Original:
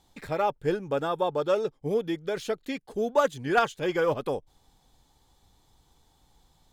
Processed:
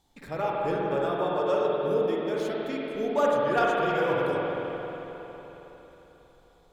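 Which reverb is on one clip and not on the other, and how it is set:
spring reverb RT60 3.9 s, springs 45/52 ms, chirp 60 ms, DRR −4.5 dB
level −5 dB

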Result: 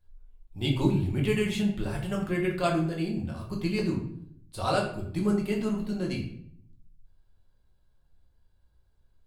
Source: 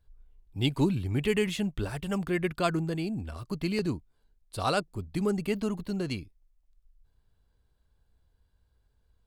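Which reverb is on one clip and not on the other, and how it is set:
rectangular room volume 110 cubic metres, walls mixed, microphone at 0.96 metres
level −3.5 dB

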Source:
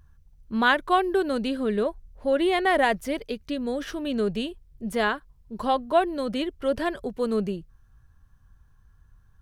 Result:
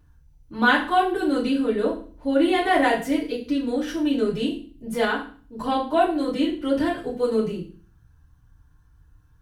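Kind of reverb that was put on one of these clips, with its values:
feedback delay network reverb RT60 0.41 s, low-frequency decay 1.4×, high-frequency decay 1×, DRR −7 dB
level −6 dB

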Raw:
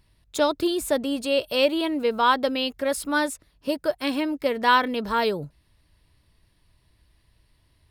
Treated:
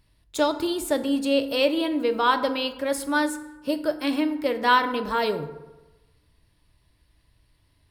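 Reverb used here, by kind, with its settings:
feedback delay network reverb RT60 1.1 s, low-frequency decay 0.95×, high-frequency decay 0.5×, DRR 8 dB
level −1.5 dB

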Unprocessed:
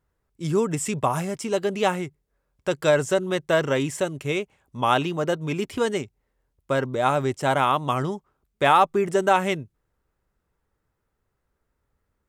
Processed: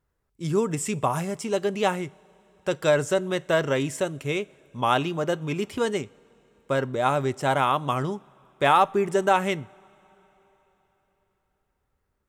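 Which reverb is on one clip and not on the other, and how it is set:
coupled-rooms reverb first 0.37 s, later 4.1 s, from −19 dB, DRR 18.5 dB
level −1.5 dB

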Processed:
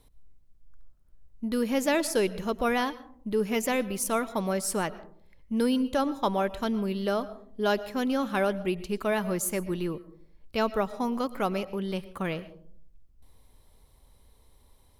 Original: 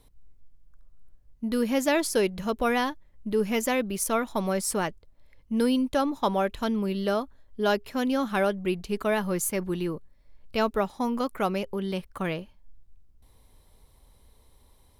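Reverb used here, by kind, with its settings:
comb and all-pass reverb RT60 0.59 s, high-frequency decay 0.3×, pre-delay 75 ms, DRR 16.5 dB
level −1.5 dB

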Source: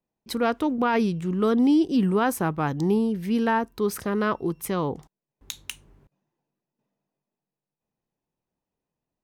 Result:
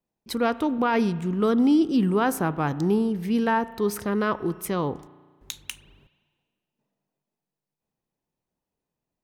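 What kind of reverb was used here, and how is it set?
spring reverb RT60 1.5 s, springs 34 ms, chirp 65 ms, DRR 16 dB

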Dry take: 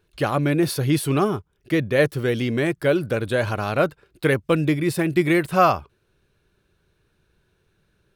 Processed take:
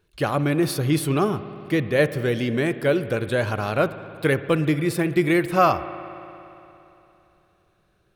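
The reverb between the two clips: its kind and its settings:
spring reverb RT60 3.1 s, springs 57 ms, chirp 75 ms, DRR 12.5 dB
level −1 dB

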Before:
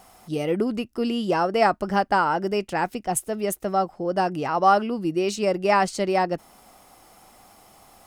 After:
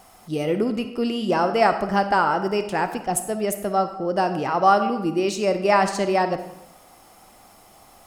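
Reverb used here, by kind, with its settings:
comb and all-pass reverb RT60 0.91 s, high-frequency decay 0.75×, pre-delay 10 ms, DRR 8.5 dB
level +1 dB

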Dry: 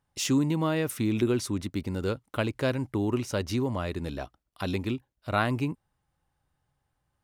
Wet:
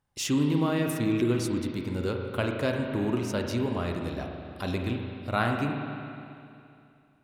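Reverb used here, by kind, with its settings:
spring reverb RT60 2.6 s, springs 34/43 ms, chirp 30 ms, DRR 2 dB
level −1.5 dB

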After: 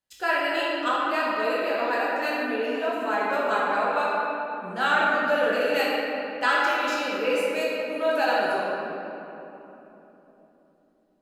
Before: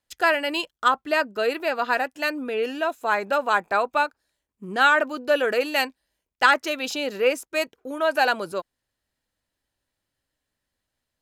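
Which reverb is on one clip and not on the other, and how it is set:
rectangular room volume 190 cubic metres, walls hard, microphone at 1.1 metres
level −9.5 dB

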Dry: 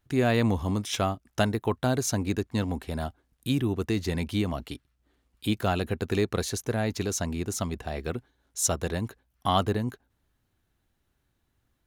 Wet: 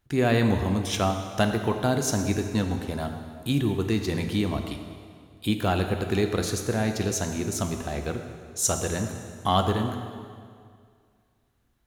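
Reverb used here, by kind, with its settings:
dense smooth reverb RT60 2.1 s, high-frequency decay 0.85×, DRR 5 dB
level +1 dB

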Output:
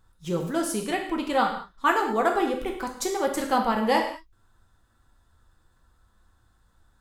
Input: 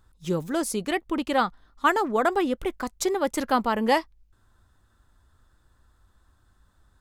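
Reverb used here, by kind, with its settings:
reverb whose tail is shaped and stops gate 240 ms falling, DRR 1 dB
level −2.5 dB

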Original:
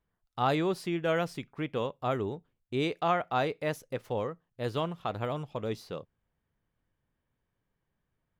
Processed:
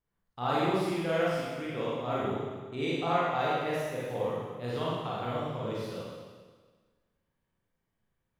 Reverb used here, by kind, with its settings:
four-comb reverb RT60 1.5 s, combs from 33 ms, DRR −7.5 dB
level −7.5 dB

